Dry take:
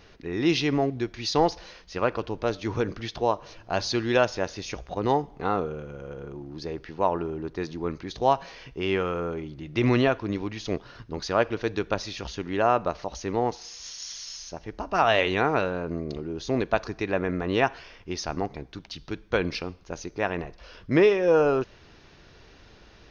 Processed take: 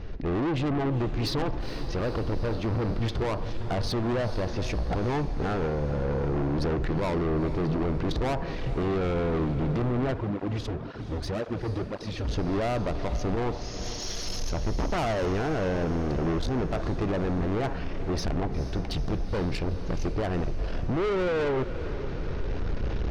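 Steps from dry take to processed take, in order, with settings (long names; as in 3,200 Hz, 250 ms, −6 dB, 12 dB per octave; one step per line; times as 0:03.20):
camcorder AGC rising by 9.5 dB per second
treble cut that deepens with the level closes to 1,600 Hz, closed at −17 dBFS
spectral tilt −3.5 dB per octave
brickwall limiter −13.5 dBFS, peak gain reduction 11 dB
soft clipping −30.5 dBFS, distortion −5 dB
feedback delay with all-pass diffusion 461 ms, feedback 68%, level −12 dB
0:10.14–0:12.29: through-zero flanger with one copy inverted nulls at 1.9 Hz, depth 6.3 ms
level +5.5 dB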